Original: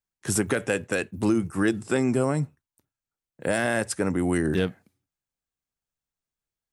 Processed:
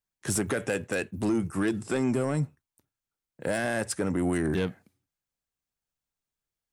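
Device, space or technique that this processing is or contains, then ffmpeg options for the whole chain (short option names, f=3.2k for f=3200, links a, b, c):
soft clipper into limiter: -af "asoftclip=type=tanh:threshold=-16.5dB,alimiter=limit=-19.5dB:level=0:latency=1"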